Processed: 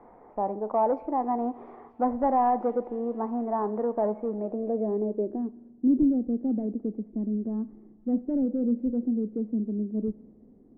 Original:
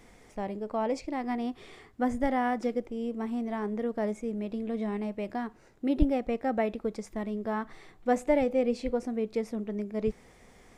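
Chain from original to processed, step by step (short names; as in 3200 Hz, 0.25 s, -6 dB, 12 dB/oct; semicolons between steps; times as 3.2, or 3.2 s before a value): three-band isolator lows -12 dB, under 210 Hz, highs -13 dB, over 2000 Hz; soft clip -24.5 dBFS, distortion -13 dB; on a send: thin delay 0.234 s, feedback 80%, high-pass 4300 Hz, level -6 dB; on the sum: spring tank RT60 1.5 s, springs 42 ms, chirp 25 ms, DRR 19 dB; low-pass sweep 930 Hz -> 260 Hz, 4.27–5.69; gain +4 dB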